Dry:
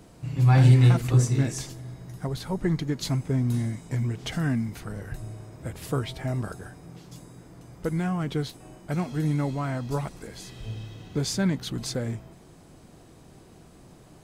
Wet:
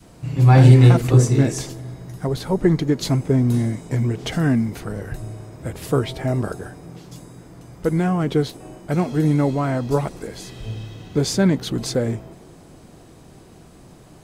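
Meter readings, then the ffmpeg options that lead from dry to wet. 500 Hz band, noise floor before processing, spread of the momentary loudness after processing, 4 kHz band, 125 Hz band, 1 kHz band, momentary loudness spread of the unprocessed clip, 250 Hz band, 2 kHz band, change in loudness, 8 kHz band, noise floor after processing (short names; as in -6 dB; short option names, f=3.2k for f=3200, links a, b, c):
+11.0 dB, -51 dBFS, 20 LU, +5.0 dB, +6.0 dB, +8.0 dB, 19 LU, +8.0 dB, +5.5 dB, +7.0 dB, +5.0 dB, -46 dBFS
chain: -af "adynamicequalizer=threshold=0.01:dfrequency=430:dqfactor=0.82:tfrequency=430:tqfactor=0.82:attack=5:release=100:ratio=0.375:range=3.5:mode=boostabove:tftype=bell,volume=5dB"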